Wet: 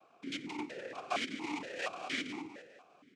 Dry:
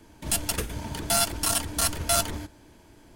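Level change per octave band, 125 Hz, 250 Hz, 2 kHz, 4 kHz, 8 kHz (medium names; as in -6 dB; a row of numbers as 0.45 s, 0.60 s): -24.0 dB, -5.0 dB, -4.5 dB, -12.5 dB, -27.5 dB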